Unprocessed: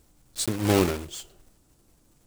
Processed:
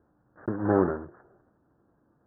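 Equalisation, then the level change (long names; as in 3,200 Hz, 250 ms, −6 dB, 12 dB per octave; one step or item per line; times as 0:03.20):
high-pass filter 65 Hz
Butterworth low-pass 1,700 Hz 96 dB per octave
low-shelf EQ 93 Hz −11.5 dB
0.0 dB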